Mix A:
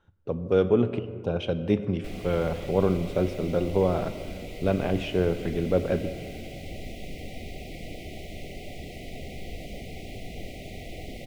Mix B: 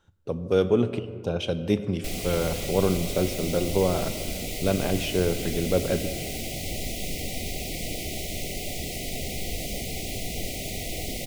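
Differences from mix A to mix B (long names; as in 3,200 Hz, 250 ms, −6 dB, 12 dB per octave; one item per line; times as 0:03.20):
background +5.0 dB
master: add bass and treble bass 0 dB, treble +15 dB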